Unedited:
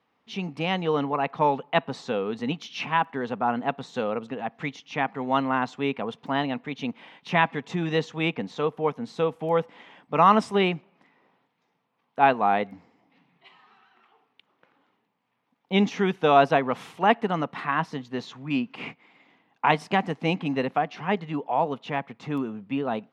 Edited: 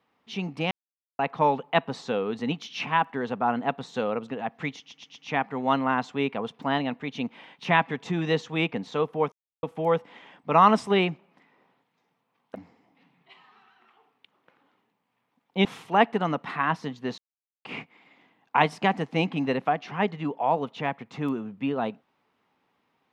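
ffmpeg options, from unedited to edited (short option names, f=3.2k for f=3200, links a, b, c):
-filter_complex "[0:a]asplit=12[a][b][c][d][e][f][g][h][i][j][k][l];[a]atrim=end=0.71,asetpts=PTS-STARTPTS,afade=t=out:st=0.706:d=0.004:c=hsin[m];[b]atrim=start=0.71:end=1.19,asetpts=PTS-STARTPTS,volume=0[n];[c]atrim=start=1.19:end=4.912,asetpts=PTS-STARTPTS,afade=t=in:d=0.004:c=hsin[o];[d]atrim=start=4.788:end=4.912[p];[e]atrim=start=4.788:end=4.912[q];[f]atrim=start=4.788:end=8.96,asetpts=PTS-STARTPTS,afade=t=out:st=4.168:d=0.004:c=hsin[r];[g]atrim=start=8.96:end=9.27,asetpts=PTS-STARTPTS,volume=0[s];[h]atrim=start=9.27:end=12.192,asetpts=PTS-STARTPTS,afade=t=in:d=0.004:c=hsin[t];[i]atrim=start=12.698:end=15.802[u];[j]atrim=start=16.738:end=18.27,asetpts=PTS-STARTPTS,afade=t=out:st=1.528:d=0.004:c=hsin[v];[k]atrim=start=18.27:end=18.74,asetpts=PTS-STARTPTS,volume=0[w];[l]atrim=start=18.74,asetpts=PTS-STARTPTS,afade=t=in:d=0.004:c=hsin[x];[m][n][o]concat=n=3:v=0:a=1[y];[y][p]acrossfade=d=0.004:c1=hsin:c2=hsin[z];[z][q]acrossfade=d=0.004:c1=hsin:c2=hsin[aa];[r][s][t]concat=n=3:v=0:a=1[ab];[aa][ab]acrossfade=d=0.004:c1=hsin:c2=hsin[ac];[ac][u]acrossfade=d=0.004:c1=hsin:c2=hsin[ad];[v][w][x]concat=n=3:v=0:a=1[ae];[ad][ae]acrossfade=d=0.004:c1=hsin:c2=hsin"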